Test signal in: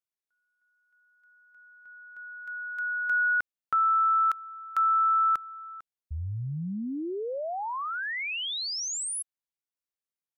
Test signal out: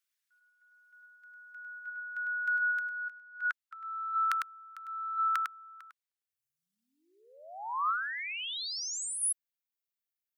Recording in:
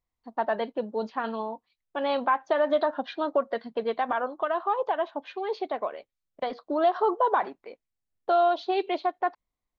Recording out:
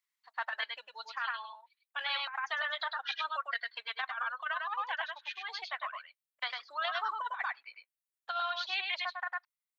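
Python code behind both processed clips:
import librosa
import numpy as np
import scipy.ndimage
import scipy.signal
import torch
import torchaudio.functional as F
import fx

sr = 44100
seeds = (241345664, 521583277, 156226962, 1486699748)

p1 = fx.high_shelf(x, sr, hz=2700.0, db=-2.5)
p2 = fx.dereverb_blind(p1, sr, rt60_s=1.9)
p3 = fx.level_steps(p2, sr, step_db=10)
p4 = p2 + (p3 * librosa.db_to_amplitude(3.0))
p5 = scipy.signal.sosfilt(scipy.signal.butter(4, 1400.0, 'highpass', fs=sr, output='sos'), p4)
p6 = p5 + fx.echo_single(p5, sr, ms=102, db=-4.5, dry=0)
y = fx.over_compress(p6, sr, threshold_db=-33.0, ratio=-0.5)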